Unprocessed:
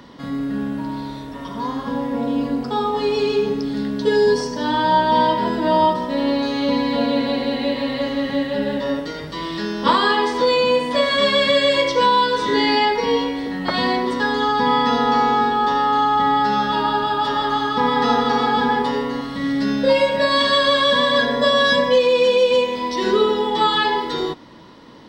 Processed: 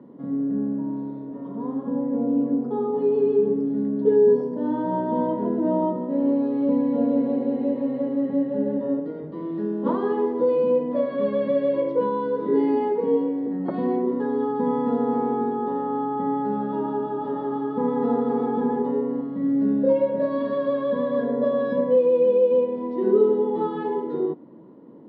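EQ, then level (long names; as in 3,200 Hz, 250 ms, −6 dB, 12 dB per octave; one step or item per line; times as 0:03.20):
flat-topped band-pass 250 Hz, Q 0.78
high-frequency loss of the air 130 metres
spectral tilt +3 dB per octave
+5.5 dB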